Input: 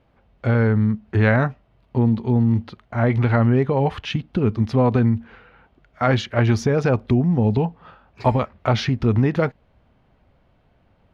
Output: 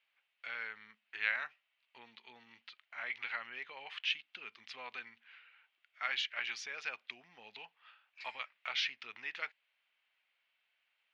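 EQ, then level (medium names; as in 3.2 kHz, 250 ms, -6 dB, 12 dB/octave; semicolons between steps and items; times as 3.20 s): ladder band-pass 3 kHz, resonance 40%; +4.0 dB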